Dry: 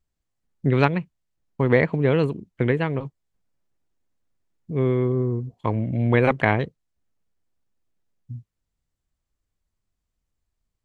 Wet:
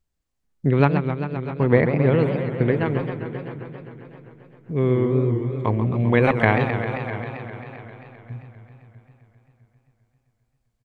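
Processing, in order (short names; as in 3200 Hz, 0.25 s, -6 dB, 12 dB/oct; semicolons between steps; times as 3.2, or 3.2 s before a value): 0.71–2.86 high shelf 2400 Hz -9.5 dB; feedback echo 0.648 s, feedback 26%, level -17 dB; warbling echo 0.132 s, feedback 79%, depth 215 cents, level -9 dB; gain +1 dB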